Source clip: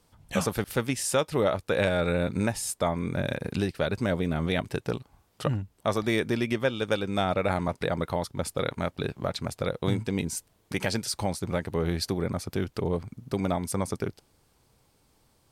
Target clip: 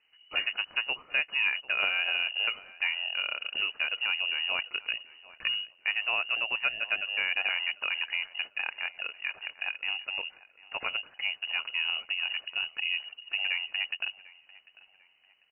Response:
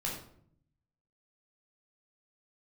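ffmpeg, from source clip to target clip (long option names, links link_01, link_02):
-filter_complex "[0:a]asettb=1/sr,asplit=3[link_01][link_02][link_03];[link_01]atrim=end=8.494[link_04];[link_02]atrim=start=8.49:end=10.88,asetpts=PTS-STARTPTS,afade=type=in:duration=0.004:curve=qsin,afade=type=out:start_time=2.386:duration=0.004:curve=qsin,highpass=frequency=220:poles=1[link_05];[link_03]atrim=start=10.876[link_06];[link_04][link_05]acrossfade=duration=0.004:curve1=hsin:curve2=qsin[link_07];[link_07][link_06]acrossfade=duration=0.004:curve1=qsin:curve2=hsin,lowpass=frequency=2600:width_type=q:width=0.5098,lowpass=frequency=2600:width_type=q:width=0.6013,lowpass=frequency=2600:width_type=q:width=0.9,lowpass=frequency=2600:width_type=q:width=2.563,afreqshift=-3000,asplit=2[link_08][link_09];[link_09]adelay=746,lowpass=frequency=1700:poles=1,volume=-17.5dB,asplit=2[link_10][link_11];[link_11]adelay=746,lowpass=frequency=1700:poles=1,volume=0.54,asplit=2[link_12][link_13];[link_13]adelay=746,lowpass=frequency=1700:poles=1,volume=0.54,asplit=2[link_14][link_15];[link_15]adelay=746,lowpass=frequency=1700:poles=1,volume=0.54,asplit=2[link_16][link_17];[link_17]adelay=746,lowpass=frequency=1700:poles=1,volume=0.54[link_18];[link_08][link_10][link_12][link_14][link_16][link_18]amix=inputs=6:normalize=0,volume=-3.5dB"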